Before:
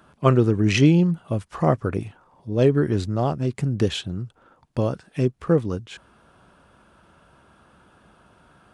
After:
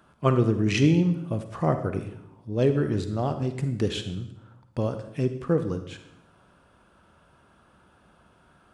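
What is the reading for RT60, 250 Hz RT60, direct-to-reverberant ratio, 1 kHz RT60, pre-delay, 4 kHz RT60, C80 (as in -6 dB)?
0.80 s, 1.1 s, 9.0 dB, 0.75 s, 40 ms, 0.70 s, 12.0 dB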